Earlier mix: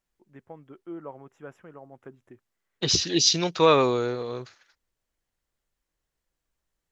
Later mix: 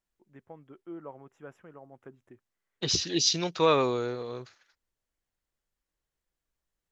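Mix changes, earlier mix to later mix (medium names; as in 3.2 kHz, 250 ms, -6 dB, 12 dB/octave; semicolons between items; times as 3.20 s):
first voice -3.5 dB; second voice -4.5 dB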